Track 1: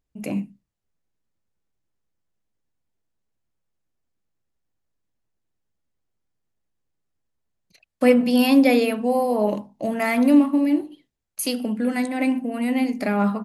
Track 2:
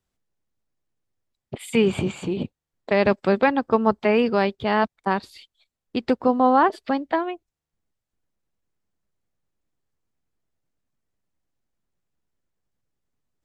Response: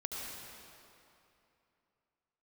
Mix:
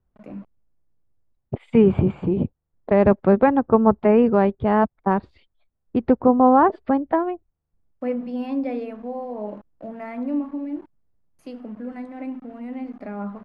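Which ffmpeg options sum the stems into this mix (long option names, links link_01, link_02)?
-filter_complex "[0:a]crystalizer=i=2.5:c=0,aeval=exprs='val(0)*gte(abs(val(0)),0.0251)':channel_layout=same,volume=-10dB[link_01];[1:a]lowshelf=frequency=120:gain=11.5,volume=2.5dB[link_02];[link_01][link_02]amix=inputs=2:normalize=0,lowpass=1200"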